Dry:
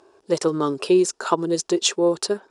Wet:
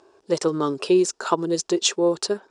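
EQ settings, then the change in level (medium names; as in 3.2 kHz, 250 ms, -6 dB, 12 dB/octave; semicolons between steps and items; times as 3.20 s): Chebyshev low-pass 7.5 kHz, order 2; 0.0 dB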